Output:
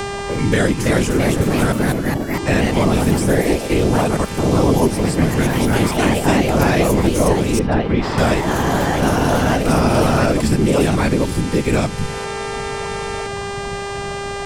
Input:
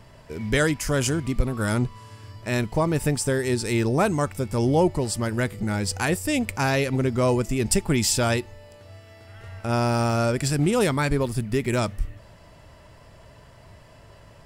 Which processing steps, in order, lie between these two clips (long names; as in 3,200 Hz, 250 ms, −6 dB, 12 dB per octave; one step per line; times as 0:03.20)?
harmonic and percussive parts rebalanced harmonic +8 dB
0:03.53–0:04.66: output level in coarse steps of 17 dB
random phases in short frames
hum with harmonics 400 Hz, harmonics 23, −36 dBFS −4 dB per octave
0:01.72–0:02.34: pair of resonant band-passes 380 Hz, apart 1.2 octaves
delay with pitch and tempo change per echo 387 ms, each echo +2 semitones, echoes 3
0:07.59–0:08.18: high-frequency loss of the air 350 metres
multiband upward and downward compressor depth 70%
level −1 dB